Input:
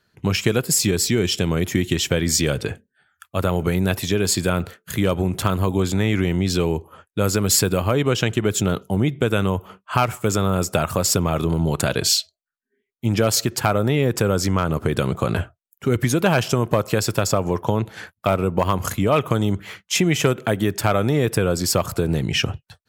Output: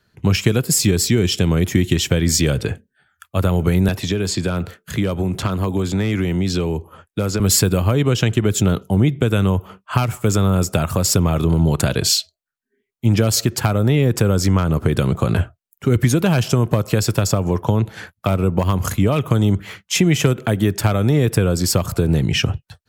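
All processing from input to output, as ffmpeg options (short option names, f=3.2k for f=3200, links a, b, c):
-filter_complex "[0:a]asettb=1/sr,asplit=3[a][b][c];[a]atrim=end=3.884[d];[b]atrim=start=3.88:end=7.4,asetpts=PTS-STARTPTS,afade=t=in:d=0.004:c=qsin,afade=t=out:st=3.516:d=0.004:c=qsin,volume=9.5dB,asoftclip=hard,volume=-9.5dB,acrossover=split=140|7600[e][f][g];[e]acompressor=threshold=-32dB:ratio=4[h];[f]acompressor=threshold=-21dB:ratio=4[i];[g]acompressor=threshold=-47dB:ratio=4[j];[h][i][j]amix=inputs=3:normalize=0[k];[c]atrim=start=7.396[l];[d][k]acrossfade=d=0.004:c1=hsin:c2=qsin[m];[m][l]acrossfade=d=0.004:c1=qsin:c2=hsin,lowshelf=f=180:g=6.5,acrossover=split=320|3000[n][o][p];[o]acompressor=threshold=-21dB:ratio=6[q];[n][q][p]amix=inputs=3:normalize=0,volume=1.5dB"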